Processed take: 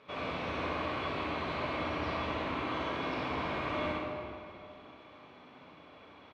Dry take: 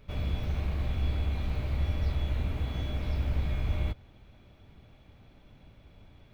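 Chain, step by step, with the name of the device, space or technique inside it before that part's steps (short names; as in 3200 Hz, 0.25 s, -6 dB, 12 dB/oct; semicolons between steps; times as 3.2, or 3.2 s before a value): station announcement (BPF 370–4000 Hz; bell 1100 Hz +9 dB 0.31 oct; loudspeakers at several distances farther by 21 m -4 dB, 43 m -11 dB; reverb RT60 2.4 s, pre-delay 31 ms, DRR 0 dB); gain +4 dB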